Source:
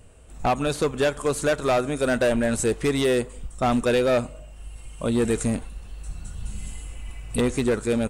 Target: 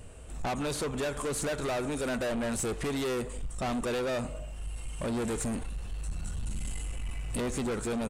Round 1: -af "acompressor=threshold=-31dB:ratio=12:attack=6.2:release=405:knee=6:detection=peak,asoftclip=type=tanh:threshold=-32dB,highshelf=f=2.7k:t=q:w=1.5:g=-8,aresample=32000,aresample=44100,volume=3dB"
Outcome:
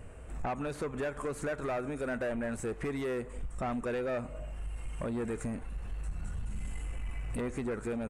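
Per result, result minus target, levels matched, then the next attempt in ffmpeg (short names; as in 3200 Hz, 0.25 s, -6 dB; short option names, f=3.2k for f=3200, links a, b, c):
4000 Hz band -9.5 dB; compressor: peak gain reduction +9 dB
-af "acompressor=threshold=-31dB:ratio=12:attack=6.2:release=405:knee=6:detection=peak,asoftclip=type=tanh:threshold=-32dB,aresample=32000,aresample=44100,volume=3dB"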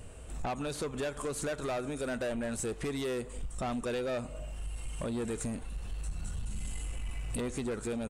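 compressor: peak gain reduction +9 dB
-af "acompressor=threshold=-21dB:ratio=12:attack=6.2:release=405:knee=6:detection=peak,asoftclip=type=tanh:threshold=-32dB,aresample=32000,aresample=44100,volume=3dB"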